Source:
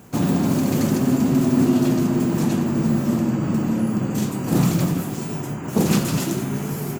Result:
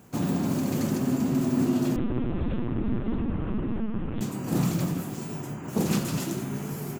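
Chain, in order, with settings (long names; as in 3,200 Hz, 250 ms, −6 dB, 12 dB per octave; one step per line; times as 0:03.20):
0:01.96–0:04.21: linear-prediction vocoder at 8 kHz pitch kept
level −7 dB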